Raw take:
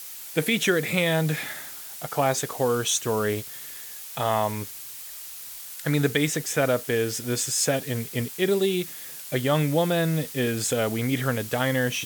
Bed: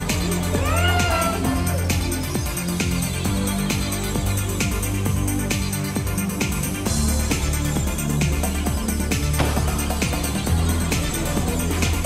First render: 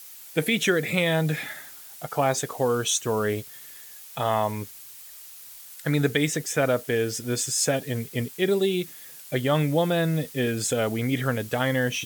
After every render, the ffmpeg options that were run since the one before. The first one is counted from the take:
-af "afftdn=nr=6:nf=-39"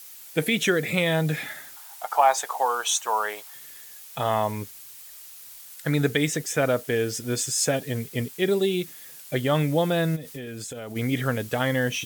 -filter_complex "[0:a]asettb=1/sr,asplit=3[s0][s1][s2];[s0]atrim=end=1.764[s3];[s1]atrim=start=1.76:end=3.54,asetpts=PTS-STARTPTS,afade=t=in:d=0.004:c=qsin,afade=t=out:st=1.776:d=0.004:c=qsin,highpass=f=860:t=q:w=3.5[s4];[s2]atrim=start=3.536[s5];[s3][s4]acrossfade=d=0.004:c1=hsin:c2=qsin[s6];[s6][s5]acrossfade=d=0.004:c1=qsin:c2=hsin,asplit=3[s7][s8][s9];[s7]afade=t=out:st=10.15:d=0.02[s10];[s8]acompressor=threshold=0.0251:ratio=16:attack=3.2:release=140:knee=1:detection=peak,afade=t=in:st=10.15:d=0.02,afade=t=out:st=10.95:d=0.02[s11];[s9]afade=t=in:st=10.95:d=0.02[s12];[s10][s11][s12]amix=inputs=3:normalize=0"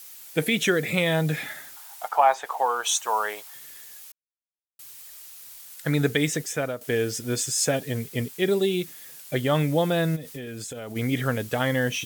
-filter_complex "[0:a]asettb=1/sr,asplit=3[s0][s1][s2];[s0]atrim=end=2.084[s3];[s1]atrim=start=2.08:end=2.84,asetpts=PTS-STARTPTS,afade=t=in:d=0.004:c=qsin,afade=t=out:st=0.756:d=0.004:c=qsin,acrossover=split=3300[s4][s5];[s5]acompressor=threshold=0.00501:ratio=4:attack=1:release=60[s6];[s4][s6]amix=inputs=2:normalize=0[s7];[s2]atrim=start=2.836[s8];[s3][s7]acrossfade=d=0.004:c1=hsin:c2=qsin[s9];[s9][s8]acrossfade=d=0.004:c1=qsin:c2=hsin,asplit=4[s10][s11][s12][s13];[s10]atrim=end=4.12,asetpts=PTS-STARTPTS,afade=t=out:st=4.116:d=0.004:c=hsin[s14];[s11]atrim=start=4.12:end=4.79,asetpts=PTS-STARTPTS,volume=0[s15];[s12]atrim=start=4.79:end=6.81,asetpts=PTS-STARTPTS,afade=t=in:d=0.004:c=hsin,afade=t=out:st=1.61:d=0.41:silence=0.211349[s16];[s13]atrim=start=6.81,asetpts=PTS-STARTPTS,afade=t=in:d=0.004:c=hsin:silence=0.211349[s17];[s14][s15][s16][s17]concat=n=4:v=0:a=1"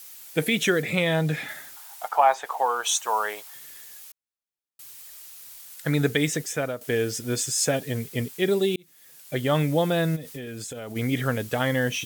-filter_complex "[0:a]asettb=1/sr,asplit=3[s0][s1][s2];[s0]atrim=end=0.824[s3];[s1]atrim=start=0.82:end=1.49,asetpts=PTS-STARTPTS,afade=t=in:d=0.004:c=qsin,afade=t=out:st=0.666:d=0.004:c=qsin,highshelf=f=8400:g=-7[s4];[s2]atrim=start=1.486[s5];[s3][s4]acrossfade=d=0.004:c1=hsin:c2=qsin[s6];[s6][s5]acrossfade=d=0.004:c1=qsin:c2=hsin,asplit=2[s7][s8];[s7]atrim=end=8.76,asetpts=PTS-STARTPTS,afade=t=out:st=8.756:d=0.004:c=hsin[s9];[s8]atrim=start=8.76,asetpts=PTS-STARTPTS,afade=t=in:d=0.74[s10];[s9][s10]concat=n=2:v=0:a=1"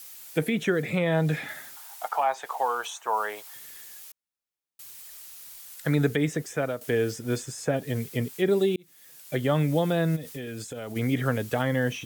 -filter_complex "[0:a]acrossover=split=310|1900[s0][s1][s2];[s1]alimiter=limit=0.15:level=0:latency=1:release=449[s3];[s2]acompressor=threshold=0.0112:ratio=6[s4];[s0][s3][s4]amix=inputs=3:normalize=0"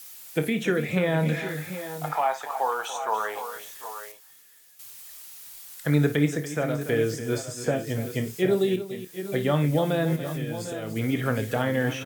-filter_complex "[0:a]asplit=2[s0][s1];[s1]adelay=27,volume=0.282[s2];[s0][s2]amix=inputs=2:normalize=0,asplit=2[s3][s4];[s4]aecho=0:1:55|287|746|767:0.211|0.237|0.158|0.237[s5];[s3][s5]amix=inputs=2:normalize=0"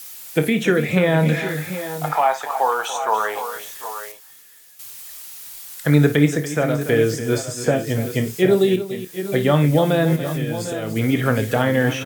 -af "volume=2.24"

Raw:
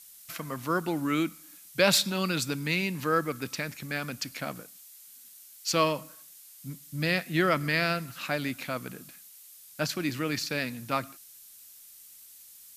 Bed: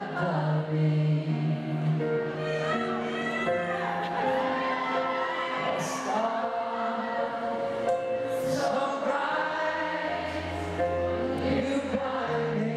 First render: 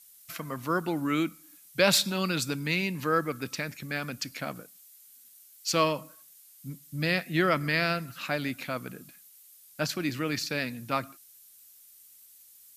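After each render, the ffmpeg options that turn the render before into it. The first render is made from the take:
-af "afftdn=nr=6:nf=-52"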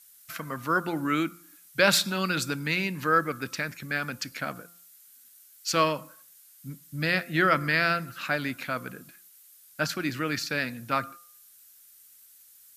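-af "equalizer=f=1500:t=o:w=0.64:g=7,bandreject=f=173.2:t=h:w=4,bandreject=f=346.4:t=h:w=4,bandreject=f=519.6:t=h:w=4,bandreject=f=692.8:t=h:w=4,bandreject=f=866:t=h:w=4,bandreject=f=1039.2:t=h:w=4,bandreject=f=1212.4:t=h:w=4,bandreject=f=1385.6:t=h:w=4"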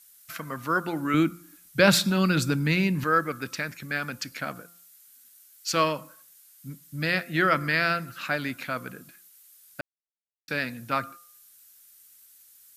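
-filter_complex "[0:a]asettb=1/sr,asplit=3[s0][s1][s2];[s0]atrim=end=1.144[s3];[s1]atrim=start=1.14:end=3.04,asetpts=PTS-STARTPTS,afade=t=in:d=0.004:c=qsin,afade=t=out:st=1.896:d=0.004:c=qsin,lowshelf=f=340:g=11[s4];[s2]atrim=start=3.036[s5];[s3][s4]acrossfade=d=0.004:c1=hsin:c2=qsin[s6];[s6][s5]acrossfade=d=0.004:c1=qsin:c2=hsin,asplit=3[s7][s8][s9];[s7]atrim=end=9.81,asetpts=PTS-STARTPTS,afade=t=out:st=9.806:d=0.004:c=hsin[s10];[s8]atrim=start=9.81:end=10.48,asetpts=PTS-STARTPTS,volume=0[s11];[s9]atrim=start=10.48,asetpts=PTS-STARTPTS,afade=t=in:d=0.004:c=hsin[s12];[s10][s11][s12]concat=n=3:v=0:a=1"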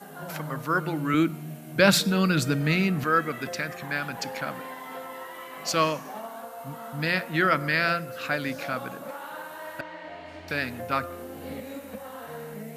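-filter_complex "[1:a]volume=0.299[s0];[0:a][s0]amix=inputs=2:normalize=0"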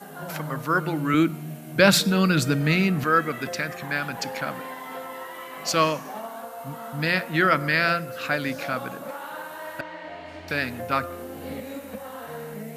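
-af "volume=1.33,alimiter=limit=0.794:level=0:latency=1"

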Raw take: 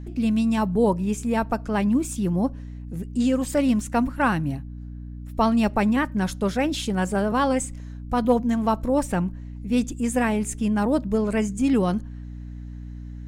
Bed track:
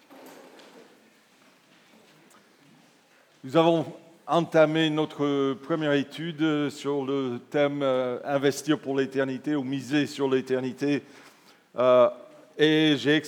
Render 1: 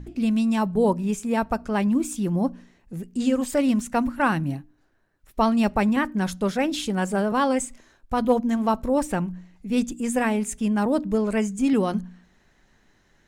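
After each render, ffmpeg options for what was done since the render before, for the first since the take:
-af "bandreject=f=60:t=h:w=4,bandreject=f=120:t=h:w=4,bandreject=f=180:t=h:w=4,bandreject=f=240:t=h:w=4,bandreject=f=300:t=h:w=4"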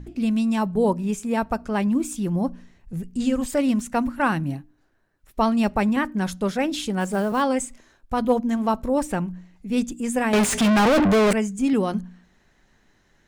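-filter_complex "[0:a]asettb=1/sr,asplit=3[s0][s1][s2];[s0]atrim=end=2.024[s3];[s1]atrim=start=2.02:end=3.46,asetpts=PTS-STARTPTS,afade=t=in:d=0.004:c=qsin,afade=t=out:st=1.436:d=0.004:c=qsin,asubboost=boost=9.5:cutoff=150[s4];[s2]atrim=start=3.456[s5];[s3][s4]acrossfade=d=0.004:c1=hsin:c2=qsin[s6];[s6][s5]acrossfade=d=0.004:c1=qsin:c2=hsin,asettb=1/sr,asplit=3[s7][s8][s9];[s7]atrim=end=7.004[s10];[s8]atrim=start=7:end=7.42,asetpts=PTS-STARTPTS,afade=t=in:d=0.004:c=qsin,afade=t=out:st=0.416:d=0.004:c=qsin,acrusher=bits=7:mode=log:mix=0:aa=0.000001[s11];[s9]atrim=start=7.416[s12];[s10][s11]acrossfade=d=0.004:c1=hsin:c2=qsin[s13];[s13][s12]acrossfade=d=0.004:c1=qsin:c2=hsin,asettb=1/sr,asplit=3[s14][s15][s16];[s14]atrim=end=10.334[s17];[s15]atrim=start=10.33:end=11.33,asetpts=PTS-STARTPTS,afade=t=in:d=0.004:c=qsin,afade=t=out:st=0.996:d=0.004:c=qsin,asplit=2[s18][s19];[s19]highpass=f=720:p=1,volume=100,asoftclip=type=tanh:threshold=0.282[s20];[s18][s20]amix=inputs=2:normalize=0,lowpass=f=3500:p=1,volume=0.501[s21];[s16]atrim=start=11.326[s22];[s17][s21]acrossfade=d=0.004:c1=hsin:c2=qsin[s23];[s23][s22]acrossfade=d=0.004:c1=qsin:c2=hsin"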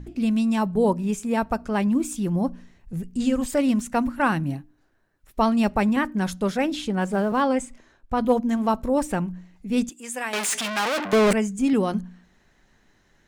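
-filter_complex "[0:a]asettb=1/sr,asplit=3[s0][s1][s2];[s0]atrim=end=6.734[s3];[s1]atrim=start=6.73:end=8.21,asetpts=PTS-STARTPTS,afade=t=in:d=0.004:c=qsin,afade=t=out:st=1.476:d=0.004:c=qsin,aemphasis=mode=reproduction:type=cd[s4];[s2]atrim=start=8.206[s5];[s3][s4]acrossfade=d=0.004:c1=hsin:c2=qsin[s6];[s6][s5]acrossfade=d=0.004:c1=qsin:c2=hsin,asettb=1/sr,asplit=3[s7][s8][s9];[s7]atrim=end=9.894[s10];[s8]atrim=start=9.89:end=11.13,asetpts=PTS-STARTPTS,afade=t=in:d=0.004:c=qsin,afade=t=out:st=1.236:d=0.004:c=qsin,highpass=f=1400:p=1[s11];[s9]atrim=start=11.126[s12];[s10][s11]acrossfade=d=0.004:c1=hsin:c2=qsin[s13];[s13][s12]acrossfade=d=0.004:c1=qsin:c2=hsin"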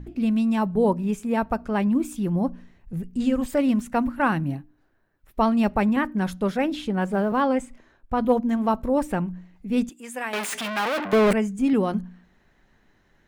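-af "equalizer=f=7000:w=0.72:g=-8.5"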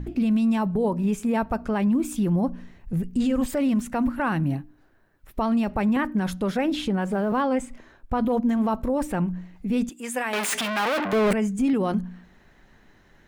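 -filter_complex "[0:a]asplit=2[s0][s1];[s1]acompressor=threshold=0.0316:ratio=6,volume=1[s2];[s0][s2]amix=inputs=2:normalize=0,alimiter=limit=0.158:level=0:latency=1:release=29"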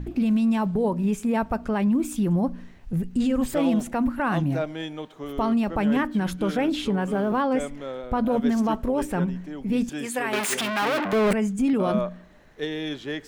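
-filter_complex "[1:a]volume=0.335[s0];[0:a][s0]amix=inputs=2:normalize=0"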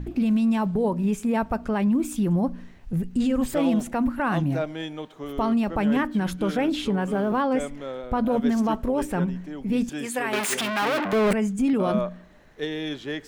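-af anull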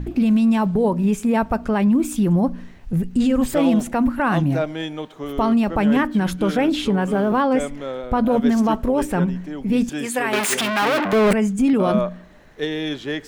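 -af "volume=1.78"

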